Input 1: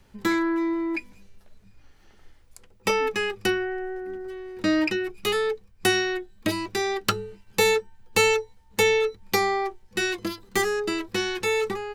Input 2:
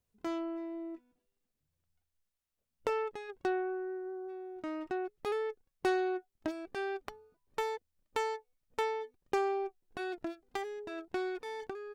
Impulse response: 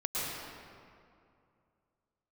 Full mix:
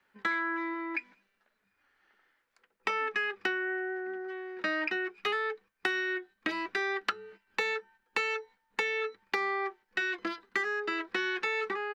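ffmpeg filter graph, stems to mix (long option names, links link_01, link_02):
-filter_complex "[0:a]equalizer=frequency=1600:width=1.1:gain=12.5,agate=range=-8dB:threshold=-40dB:ratio=16:detection=peak,acrossover=split=170 5300:gain=0.0891 1 0.0631[link_01][link_02][link_03];[link_01][link_02][link_03]amix=inputs=3:normalize=0,volume=-6.5dB[link_04];[1:a]adelay=5,volume=-1dB[link_05];[link_04][link_05]amix=inputs=2:normalize=0,lowshelf=frequency=200:gain=-10,acompressor=threshold=-28dB:ratio=6"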